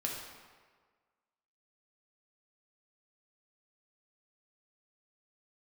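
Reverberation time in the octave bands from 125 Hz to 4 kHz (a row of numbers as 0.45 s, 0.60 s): 1.3 s, 1.4 s, 1.6 s, 1.6 s, 1.3 s, 1.1 s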